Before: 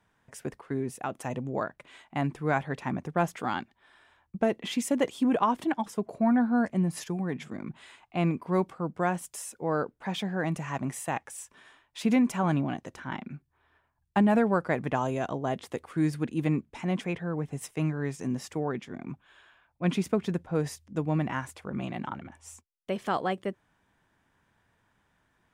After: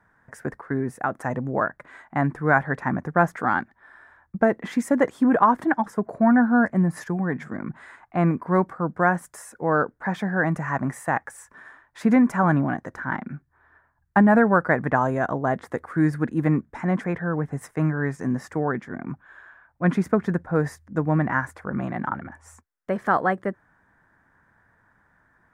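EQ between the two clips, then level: peaking EQ 390 Hz -2.5 dB 0.3 oct; resonant high shelf 2.2 kHz -9 dB, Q 3; +6.0 dB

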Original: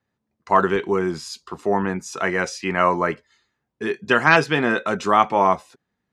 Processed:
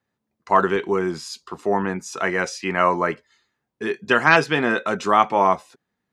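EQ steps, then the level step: bass shelf 100 Hz -7 dB; 0.0 dB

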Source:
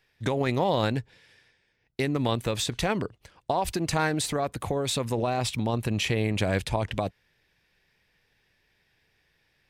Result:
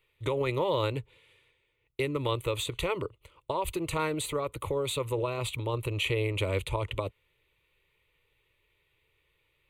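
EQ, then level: static phaser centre 1.1 kHz, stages 8; 0.0 dB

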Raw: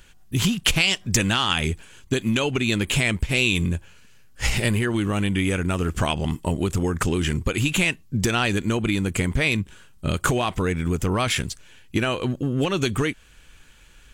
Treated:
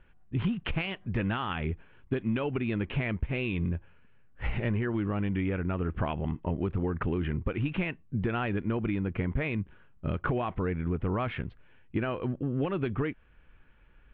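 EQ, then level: Bessel low-pass 1.6 kHz, order 8; -6.5 dB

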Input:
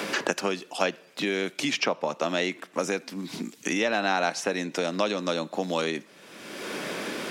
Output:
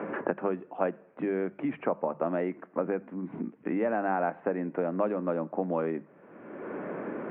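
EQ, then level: Gaussian low-pass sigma 5.8 samples; distance through air 130 m; hum notches 50/100/150/200 Hz; 0.0 dB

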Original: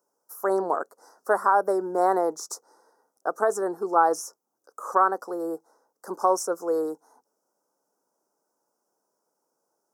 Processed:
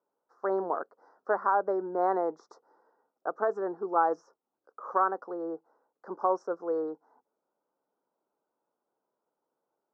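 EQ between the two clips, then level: low-pass 3.2 kHz 12 dB/octave; distance through air 200 m; -4.5 dB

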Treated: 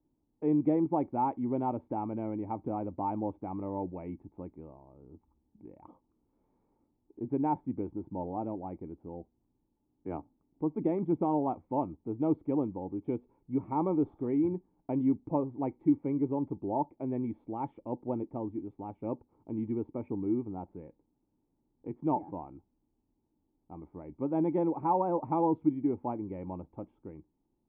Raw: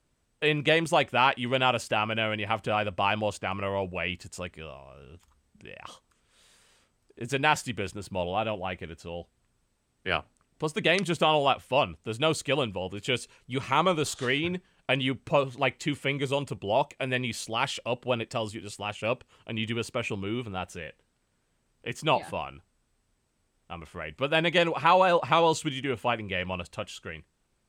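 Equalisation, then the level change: cascade formant filter u; peaking EQ 1.2 kHz +7 dB 0.52 oct; +7.5 dB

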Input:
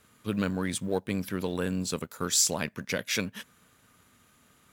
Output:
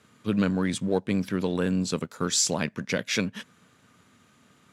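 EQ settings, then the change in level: band-pass 140–7500 Hz; bass shelf 230 Hz +8 dB; +2.0 dB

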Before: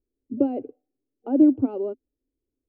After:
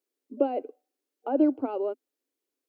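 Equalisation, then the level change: high-pass 690 Hz 12 dB/octave; +7.5 dB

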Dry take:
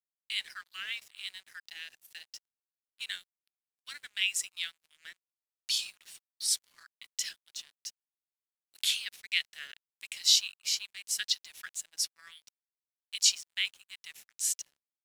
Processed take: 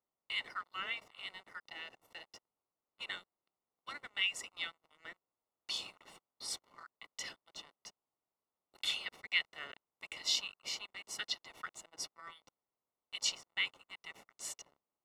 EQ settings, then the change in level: Savitzky-Golay filter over 65 samples; bass shelf 150 Hz -9.5 dB; +14.0 dB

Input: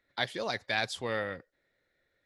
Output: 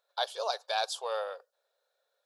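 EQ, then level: brick-wall FIR high-pass 360 Hz; static phaser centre 830 Hz, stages 4; +4.5 dB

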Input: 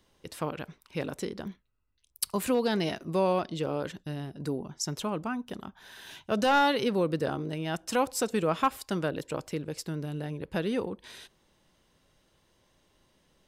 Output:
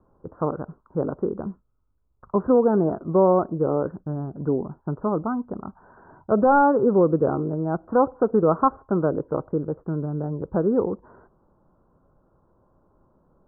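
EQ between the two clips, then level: steep low-pass 1.4 kHz 72 dB/octave; dynamic bell 400 Hz, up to +4 dB, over -38 dBFS, Q 1.9; distance through air 250 m; +7.5 dB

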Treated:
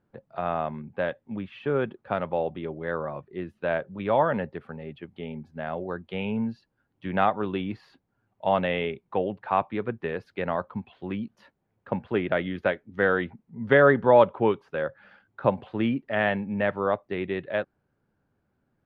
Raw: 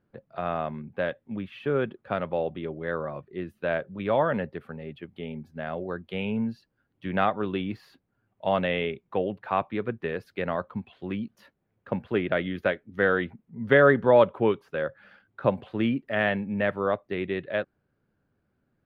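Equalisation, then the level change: distance through air 60 m; peaking EQ 870 Hz +5 dB 0.5 oct; 0.0 dB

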